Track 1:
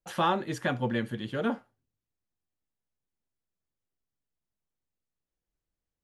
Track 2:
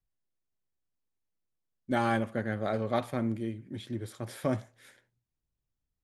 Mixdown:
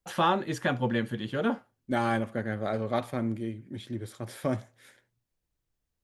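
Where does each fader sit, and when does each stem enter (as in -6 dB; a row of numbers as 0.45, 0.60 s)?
+1.5, +0.5 dB; 0.00, 0.00 s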